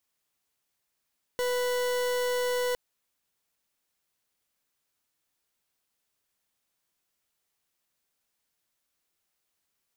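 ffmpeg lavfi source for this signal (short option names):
-f lavfi -i "aevalsrc='0.0398*(2*lt(mod(494*t,1),0.4)-1)':d=1.36:s=44100"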